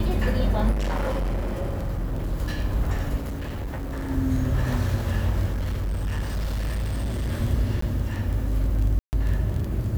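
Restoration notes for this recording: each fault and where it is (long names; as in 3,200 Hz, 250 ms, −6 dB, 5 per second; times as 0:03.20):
surface crackle 13 per second
0:00.71–0:02.33: clipping −22.5 dBFS
0:03.16–0:04.10: clipping −27 dBFS
0:05.52–0:07.33: clipping −23 dBFS
0:07.81–0:07.82: drop-out
0:08.99–0:09.13: drop-out 139 ms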